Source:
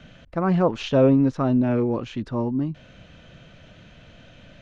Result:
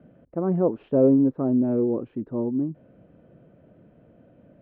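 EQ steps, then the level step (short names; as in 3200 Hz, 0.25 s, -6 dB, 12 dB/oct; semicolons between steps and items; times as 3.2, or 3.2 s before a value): band-pass 390 Hz, Q 1.3; air absorption 470 m; low shelf 410 Hz +5 dB; 0.0 dB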